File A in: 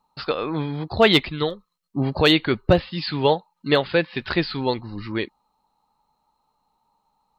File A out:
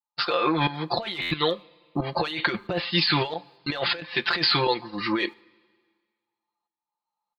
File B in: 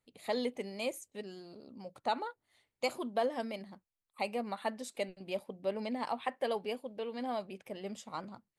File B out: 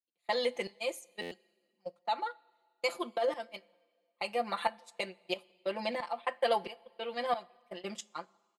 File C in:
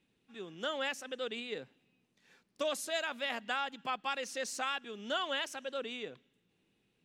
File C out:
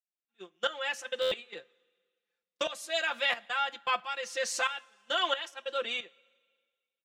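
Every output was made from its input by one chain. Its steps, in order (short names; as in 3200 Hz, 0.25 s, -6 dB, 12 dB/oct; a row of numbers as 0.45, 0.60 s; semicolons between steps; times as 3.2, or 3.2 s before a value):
HPF 800 Hz 6 dB/oct; tremolo saw up 1.5 Hz, depth 85%; gate -51 dBFS, range -29 dB; in parallel at -6 dB: soft clip -20.5 dBFS; on the sum: high shelf 9300 Hz -10 dB; comb 5.8 ms, depth 94%; negative-ratio compressor -31 dBFS, ratio -1; two-slope reverb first 0.21 s, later 1.7 s, from -18 dB, DRR 16 dB; stuck buffer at 1.21, samples 512, times 8; gain +5 dB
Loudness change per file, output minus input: -3.5, +2.0, +5.0 LU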